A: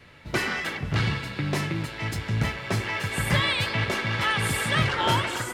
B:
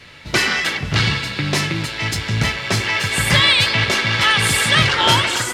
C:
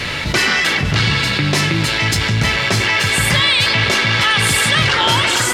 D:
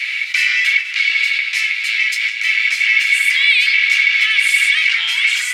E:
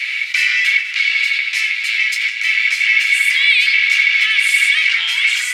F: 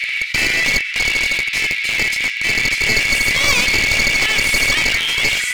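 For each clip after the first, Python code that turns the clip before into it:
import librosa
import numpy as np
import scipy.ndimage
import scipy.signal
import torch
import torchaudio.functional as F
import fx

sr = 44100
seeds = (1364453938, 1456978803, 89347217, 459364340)

y1 = fx.peak_eq(x, sr, hz=5000.0, db=9.5, octaves=2.4)
y1 = y1 * 10.0 ** (5.5 / 20.0)
y2 = fx.env_flatten(y1, sr, amount_pct=70)
y2 = y2 * 10.0 ** (-1.5 / 20.0)
y3 = fx.ladder_highpass(y2, sr, hz=2100.0, resonance_pct=75)
y3 = y3 * 10.0 ** (4.5 / 20.0)
y4 = y3 + 10.0 ** (-16.5 / 20.0) * np.pad(y3, (int(85 * sr / 1000.0), 0))[:len(y3)]
y5 = np.minimum(y4, 2.0 * 10.0 ** (-13.5 / 20.0) - y4)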